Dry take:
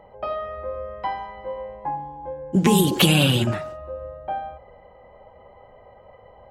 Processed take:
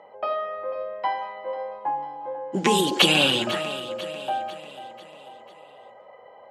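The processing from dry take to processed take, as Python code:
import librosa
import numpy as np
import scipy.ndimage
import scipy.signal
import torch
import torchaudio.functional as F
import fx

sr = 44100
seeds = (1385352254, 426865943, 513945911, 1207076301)

p1 = fx.bandpass_edges(x, sr, low_hz=290.0, high_hz=7000.0)
p2 = fx.low_shelf(p1, sr, hz=440.0, db=-5.0)
p3 = p2 + fx.echo_feedback(p2, sr, ms=495, feedback_pct=48, wet_db=-14, dry=0)
y = p3 * 10.0 ** (2.5 / 20.0)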